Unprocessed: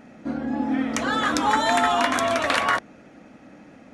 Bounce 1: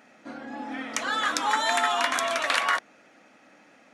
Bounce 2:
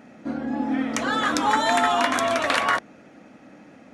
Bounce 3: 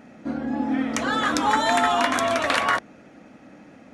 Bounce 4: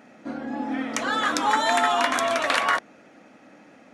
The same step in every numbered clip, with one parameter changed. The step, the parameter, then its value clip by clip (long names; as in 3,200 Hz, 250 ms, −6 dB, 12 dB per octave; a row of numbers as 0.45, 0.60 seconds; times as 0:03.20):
high-pass filter, corner frequency: 1,200, 110, 43, 390 Hertz